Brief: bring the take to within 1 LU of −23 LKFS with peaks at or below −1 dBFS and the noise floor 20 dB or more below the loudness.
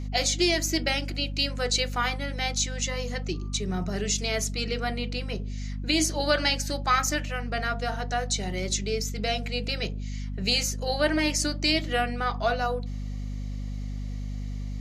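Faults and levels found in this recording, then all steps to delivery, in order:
mains hum 50 Hz; hum harmonics up to 250 Hz; level of the hum −30 dBFS; integrated loudness −27.5 LKFS; sample peak −10.0 dBFS; target loudness −23.0 LKFS
→ hum removal 50 Hz, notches 5
level +4.5 dB

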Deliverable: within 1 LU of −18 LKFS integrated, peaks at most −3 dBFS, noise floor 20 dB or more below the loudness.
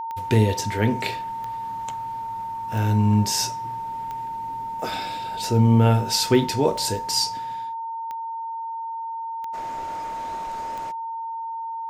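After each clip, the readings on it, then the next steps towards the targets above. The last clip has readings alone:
number of clicks 9; interfering tone 910 Hz; level of the tone −28 dBFS; integrated loudness −24.5 LKFS; sample peak −5.5 dBFS; target loudness −18.0 LKFS
→ click removal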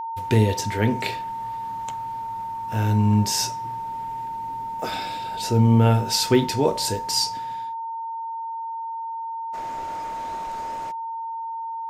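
number of clicks 0; interfering tone 910 Hz; level of the tone −28 dBFS
→ notch filter 910 Hz, Q 30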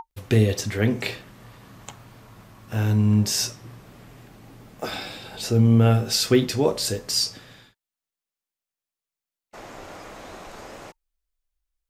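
interfering tone none found; integrated loudness −22.0 LKFS; sample peak −6.0 dBFS; target loudness −18.0 LKFS
→ level +4 dB
brickwall limiter −3 dBFS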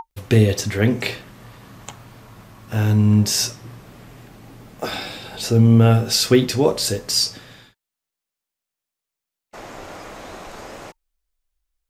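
integrated loudness −18.0 LKFS; sample peak −3.0 dBFS; background noise floor −86 dBFS

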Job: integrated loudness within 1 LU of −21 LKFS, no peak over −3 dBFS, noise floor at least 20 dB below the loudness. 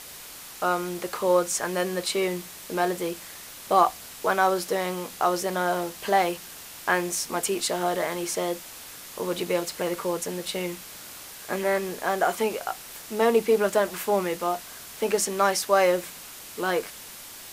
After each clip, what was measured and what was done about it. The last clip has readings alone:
background noise floor −43 dBFS; target noise floor −46 dBFS; integrated loudness −26.0 LKFS; sample peak −6.5 dBFS; target loudness −21.0 LKFS
→ broadband denoise 6 dB, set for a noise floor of −43 dBFS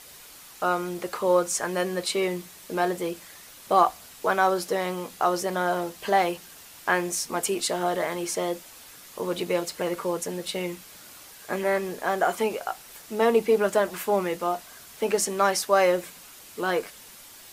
background noise floor −47 dBFS; integrated loudness −26.0 LKFS; sample peak −6.5 dBFS; target loudness −21.0 LKFS
→ level +5 dB
brickwall limiter −3 dBFS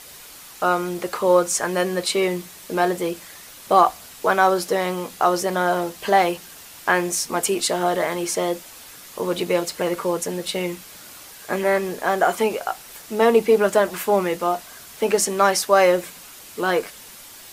integrated loudness −21.5 LKFS; sample peak −3.0 dBFS; background noise floor −42 dBFS

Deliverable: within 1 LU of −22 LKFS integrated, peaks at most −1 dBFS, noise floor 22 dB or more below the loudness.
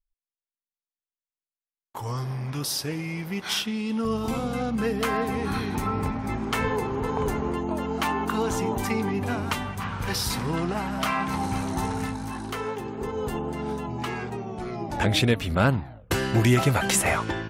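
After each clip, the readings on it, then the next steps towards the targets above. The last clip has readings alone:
integrated loudness −27.0 LKFS; sample peak −10.0 dBFS; target loudness −22.0 LKFS
→ level +5 dB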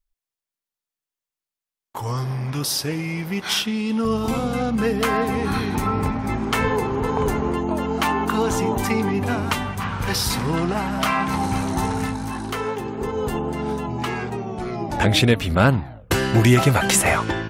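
integrated loudness −22.0 LKFS; sample peak −5.0 dBFS; background noise floor −90 dBFS

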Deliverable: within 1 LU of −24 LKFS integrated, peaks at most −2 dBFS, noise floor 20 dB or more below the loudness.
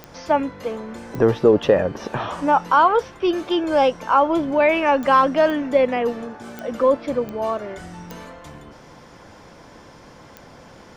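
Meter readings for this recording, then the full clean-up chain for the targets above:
number of clicks 8; integrated loudness −19.5 LKFS; sample peak −3.0 dBFS; target loudness −24.0 LKFS
→ click removal
level −4.5 dB

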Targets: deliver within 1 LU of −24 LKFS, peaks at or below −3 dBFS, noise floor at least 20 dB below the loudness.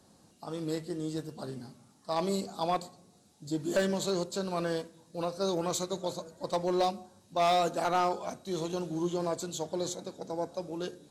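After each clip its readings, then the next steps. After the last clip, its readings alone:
share of clipped samples 0.5%; peaks flattened at −21.0 dBFS; integrated loudness −33.0 LKFS; sample peak −21.0 dBFS; target loudness −24.0 LKFS
→ clipped peaks rebuilt −21 dBFS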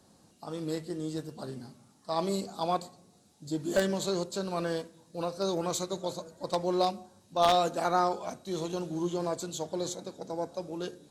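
share of clipped samples 0.0%; integrated loudness −32.5 LKFS; sample peak −12.0 dBFS; target loudness −24.0 LKFS
→ level +8.5 dB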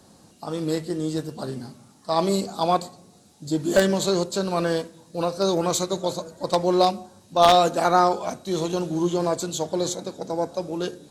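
integrated loudness −24.0 LKFS; sample peak −3.5 dBFS; background noise floor −54 dBFS

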